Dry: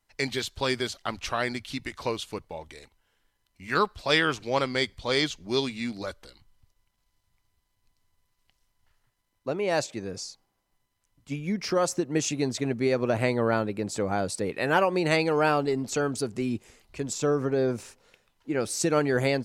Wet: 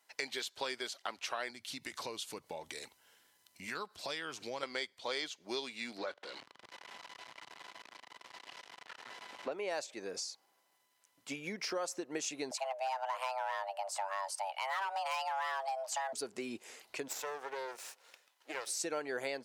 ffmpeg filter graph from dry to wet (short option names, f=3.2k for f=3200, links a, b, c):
-filter_complex "[0:a]asettb=1/sr,asplit=3[a][b][c];[a]atrim=end=1.504[d];[b]atrim=start=1.5:end=4.63,asetpts=PTS-STARTPTS,afade=t=in:d=0.004:c=qsin,afade=t=out:st=3.126:d=0.004:c=qsin,bass=f=250:g=13,treble=f=4k:g=6,acompressor=threshold=-40dB:ratio=2:attack=3.2:release=140:knee=1:detection=peak[e];[c]atrim=start=4.626[f];[d][e]acrossfade=d=0.004:c1=hsin:c2=qsin[g];[g][f]acrossfade=d=0.004:c1=qsin:c2=hsin,asettb=1/sr,asplit=3[h][i][j];[h]atrim=end=5.984[k];[i]atrim=start=5.98:end=9.52,asetpts=PTS-STARTPTS,afade=t=in:d=0.004:c=qsin,afade=t=out:st=3.536:d=0.004:c=qsin,aeval=exprs='val(0)+0.5*0.0075*sgn(val(0))':c=same,highpass=110,lowpass=3.6k[l];[j]atrim=start=9.516[m];[k][l]acrossfade=d=0.004:c1=hsin:c2=qsin[n];[n][m]acrossfade=d=0.004:c1=qsin:c2=hsin,asettb=1/sr,asplit=3[o][p][q];[o]atrim=end=12.514[r];[p]atrim=start=12.51:end=16.13,asetpts=PTS-STARTPTS,afade=t=in:d=0.004:c=qsin,afade=t=out:st=3.616:d=0.004:c=qsin,highpass=f=170:w=0.5412,highpass=f=170:w=1.3066,volume=19.5dB,asoftclip=hard,volume=-19.5dB,afreqshift=390[s];[q]atrim=start=16.126[t];[r][s]acrossfade=d=0.004:c1=hsin:c2=qsin[u];[u][t]acrossfade=d=0.004:c1=qsin:c2=hsin,asettb=1/sr,asplit=3[v][w][x];[v]atrim=end=17.084[y];[w]atrim=start=17.08:end=18.67,asetpts=PTS-STARTPTS,afade=t=in:d=0.004:c=qsin,afade=t=out:st=1.586:d=0.004:c=qsin,highpass=550,aeval=exprs='max(val(0),0)':c=same[z];[x]atrim=start=18.666[aa];[y][z]acrossfade=d=0.004:c1=hsin:c2=qsin[ab];[ab][aa]acrossfade=d=0.004:c1=qsin:c2=hsin,highpass=470,bandreject=f=1.2k:w=21,acompressor=threshold=-46dB:ratio=3,volume=5.5dB"